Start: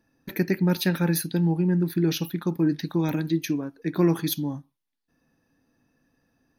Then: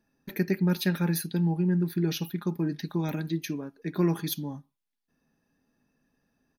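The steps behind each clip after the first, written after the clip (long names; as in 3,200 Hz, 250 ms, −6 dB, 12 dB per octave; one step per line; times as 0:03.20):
comb filter 4.9 ms, depth 36%
level −4.5 dB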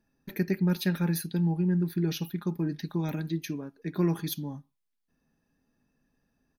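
low-shelf EQ 100 Hz +7.5 dB
level −2.5 dB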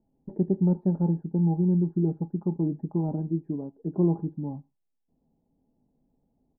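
elliptic low-pass filter 850 Hz, stop band 70 dB
level +3.5 dB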